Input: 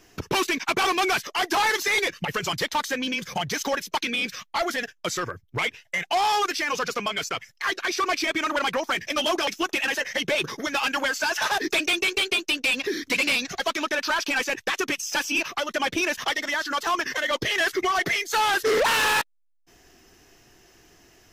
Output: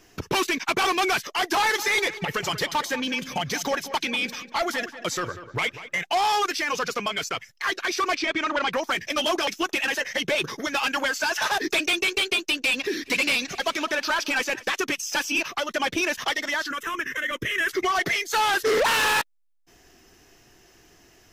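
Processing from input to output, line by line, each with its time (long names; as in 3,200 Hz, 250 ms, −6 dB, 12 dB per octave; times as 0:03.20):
0:01.59–0:05.99: tape delay 191 ms, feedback 44%, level −11 dB
0:08.15–0:08.72: low-pass filter 5,100 Hz
0:12.41–0:14.73: repeating echo 210 ms, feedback 55%, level −21.5 dB
0:16.71–0:17.69: phaser with its sweep stopped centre 1,900 Hz, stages 4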